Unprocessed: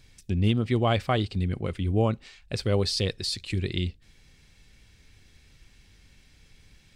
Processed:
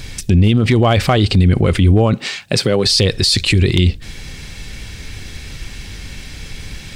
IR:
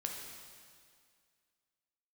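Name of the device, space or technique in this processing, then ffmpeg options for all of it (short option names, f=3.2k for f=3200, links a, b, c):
loud club master: -filter_complex "[0:a]acompressor=threshold=-26dB:ratio=2.5,asoftclip=type=hard:threshold=-20dB,alimiter=level_in=29.5dB:limit=-1dB:release=50:level=0:latency=1,asettb=1/sr,asplit=3[a][b][c];[a]atrim=end=2.134[d];[b]atrim=start=2.13:end=2.86,asetpts=PTS-STARTPTS,afade=t=in:d=0.004:c=qsin,afade=t=out:st=0.726:d=0.004:c=qsin,highpass=f=130:w=0.5412,highpass=f=130:w=1.3066[e];[c]atrim=start=2.856[f];[d][e]acrossfade=d=0.004:c1=hsin:c2=qsin[g];[g][f]acrossfade=d=0.004:c1=qsin:c2=hsin,volume=-4dB"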